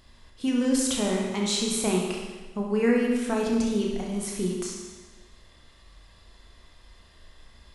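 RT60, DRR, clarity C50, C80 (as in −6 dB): 1.3 s, −1.5 dB, 1.5 dB, 4.0 dB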